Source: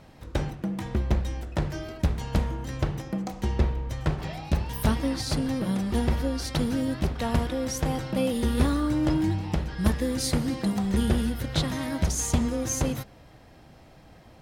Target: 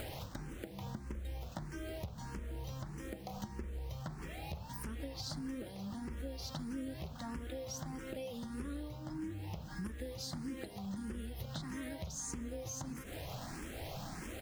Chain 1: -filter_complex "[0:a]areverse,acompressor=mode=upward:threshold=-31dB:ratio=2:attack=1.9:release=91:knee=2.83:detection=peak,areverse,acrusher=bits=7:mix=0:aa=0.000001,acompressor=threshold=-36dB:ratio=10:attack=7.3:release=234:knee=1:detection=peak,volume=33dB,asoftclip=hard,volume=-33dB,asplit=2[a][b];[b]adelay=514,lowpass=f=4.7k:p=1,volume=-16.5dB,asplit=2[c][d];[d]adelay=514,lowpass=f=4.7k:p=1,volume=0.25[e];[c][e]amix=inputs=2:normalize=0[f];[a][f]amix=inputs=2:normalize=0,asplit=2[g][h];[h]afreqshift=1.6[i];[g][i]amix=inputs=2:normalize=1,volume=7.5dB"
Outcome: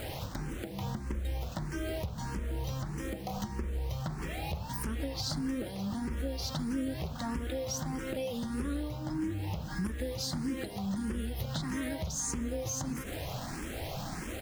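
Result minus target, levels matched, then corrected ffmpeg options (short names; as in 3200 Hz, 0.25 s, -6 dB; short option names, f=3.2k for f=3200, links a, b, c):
compressor: peak gain reduction -8 dB
-filter_complex "[0:a]areverse,acompressor=mode=upward:threshold=-31dB:ratio=2:attack=1.9:release=91:knee=2.83:detection=peak,areverse,acrusher=bits=7:mix=0:aa=0.000001,acompressor=threshold=-45dB:ratio=10:attack=7.3:release=234:knee=1:detection=peak,volume=33dB,asoftclip=hard,volume=-33dB,asplit=2[a][b];[b]adelay=514,lowpass=f=4.7k:p=1,volume=-16.5dB,asplit=2[c][d];[d]adelay=514,lowpass=f=4.7k:p=1,volume=0.25[e];[c][e]amix=inputs=2:normalize=0[f];[a][f]amix=inputs=2:normalize=0,asplit=2[g][h];[h]afreqshift=1.6[i];[g][i]amix=inputs=2:normalize=1,volume=7.5dB"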